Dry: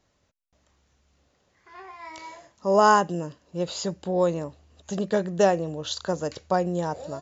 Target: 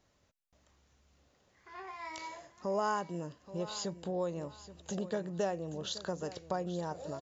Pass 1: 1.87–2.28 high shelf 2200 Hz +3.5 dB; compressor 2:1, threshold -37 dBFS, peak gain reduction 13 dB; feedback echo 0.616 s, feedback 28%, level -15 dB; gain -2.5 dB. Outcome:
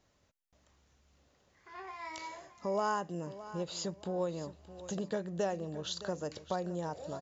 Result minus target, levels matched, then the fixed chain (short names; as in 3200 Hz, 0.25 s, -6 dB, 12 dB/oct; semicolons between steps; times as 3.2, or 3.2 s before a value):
echo 0.211 s early
1.87–2.28 high shelf 2200 Hz +3.5 dB; compressor 2:1, threshold -37 dBFS, peak gain reduction 13 dB; feedback echo 0.827 s, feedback 28%, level -15 dB; gain -2.5 dB